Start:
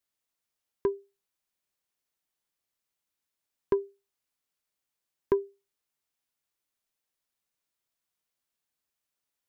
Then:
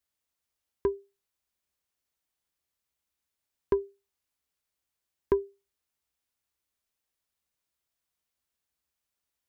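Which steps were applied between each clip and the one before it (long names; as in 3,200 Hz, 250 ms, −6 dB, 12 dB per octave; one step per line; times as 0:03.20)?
parametric band 64 Hz +12 dB 0.68 octaves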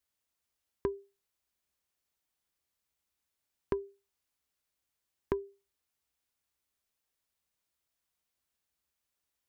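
downward compressor 6 to 1, threshold −29 dBFS, peak gain reduction 9 dB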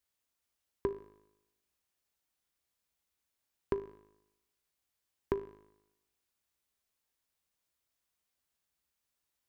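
tuned comb filter 52 Hz, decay 0.92 s, harmonics all, mix 60%
level +6 dB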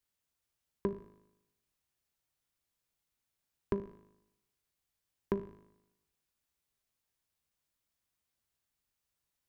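sub-octave generator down 1 octave, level +2 dB
level −1.5 dB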